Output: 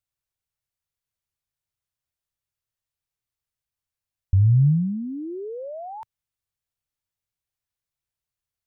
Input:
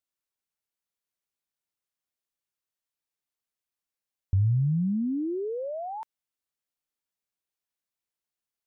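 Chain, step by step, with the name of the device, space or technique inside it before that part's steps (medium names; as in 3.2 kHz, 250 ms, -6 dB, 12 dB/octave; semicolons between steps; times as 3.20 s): car stereo with a boomy subwoofer (resonant low shelf 160 Hz +12 dB, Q 1.5; peak limiter -12.5 dBFS, peak gain reduction 9 dB)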